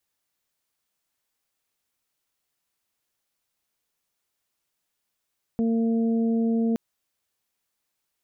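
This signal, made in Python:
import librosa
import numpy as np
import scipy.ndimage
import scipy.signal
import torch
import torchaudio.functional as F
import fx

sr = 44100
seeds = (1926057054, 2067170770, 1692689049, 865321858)

y = fx.additive_steady(sr, length_s=1.17, hz=228.0, level_db=-20.5, upper_db=(-9.0, -19.0))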